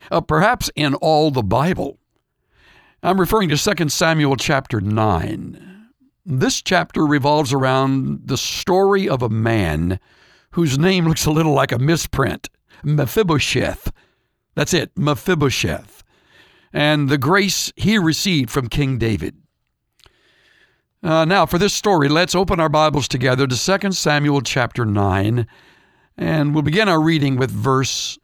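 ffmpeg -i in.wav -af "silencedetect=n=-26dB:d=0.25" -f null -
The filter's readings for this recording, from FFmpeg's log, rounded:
silence_start: 1.90
silence_end: 3.03 | silence_duration: 1.13
silence_start: 5.51
silence_end: 6.28 | silence_duration: 0.78
silence_start: 9.97
silence_end: 10.56 | silence_duration: 0.60
silence_start: 12.47
silence_end: 12.84 | silence_duration: 0.38
silence_start: 13.90
silence_end: 14.57 | silence_duration: 0.67
silence_start: 15.79
silence_end: 16.75 | silence_duration: 0.95
silence_start: 19.29
silence_end: 21.04 | silence_duration: 1.74
silence_start: 25.44
silence_end: 26.19 | silence_duration: 0.74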